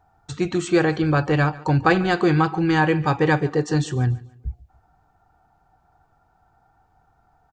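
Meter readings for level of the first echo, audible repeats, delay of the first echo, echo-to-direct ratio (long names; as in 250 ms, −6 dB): −20.0 dB, 2, 143 ms, −19.5 dB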